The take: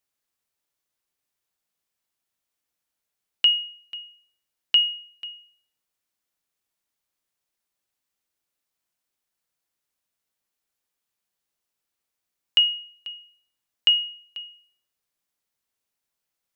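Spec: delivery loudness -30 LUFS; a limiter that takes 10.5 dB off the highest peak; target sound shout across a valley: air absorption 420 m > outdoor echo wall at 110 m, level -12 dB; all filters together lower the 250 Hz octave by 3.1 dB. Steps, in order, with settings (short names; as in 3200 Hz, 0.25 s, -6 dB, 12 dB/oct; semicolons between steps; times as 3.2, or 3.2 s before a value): bell 250 Hz -3.5 dB; limiter -20 dBFS; air absorption 420 m; outdoor echo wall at 110 m, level -12 dB; gain +6 dB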